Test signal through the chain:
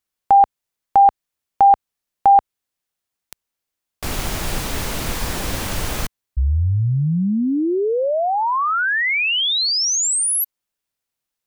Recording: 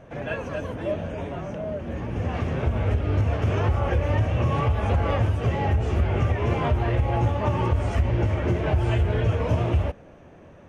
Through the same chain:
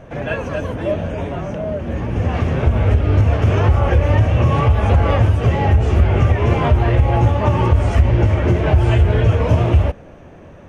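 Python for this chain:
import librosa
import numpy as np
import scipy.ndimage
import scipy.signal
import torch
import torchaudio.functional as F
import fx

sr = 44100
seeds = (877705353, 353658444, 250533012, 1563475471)

y = fx.low_shelf(x, sr, hz=72.0, db=5.0)
y = y * 10.0 ** (7.0 / 20.0)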